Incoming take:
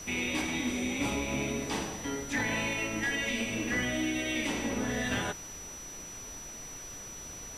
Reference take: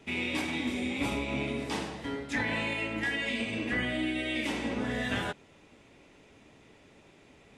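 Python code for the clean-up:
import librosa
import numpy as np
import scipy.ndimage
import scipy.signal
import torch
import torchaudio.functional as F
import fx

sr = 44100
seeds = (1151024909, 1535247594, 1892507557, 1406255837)

y = fx.fix_declip(x, sr, threshold_db=-23.5)
y = fx.notch(y, sr, hz=5900.0, q=30.0)
y = fx.noise_reduce(y, sr, print_start_s=5.67, print_end_s=6.17, reduce_db=14.0)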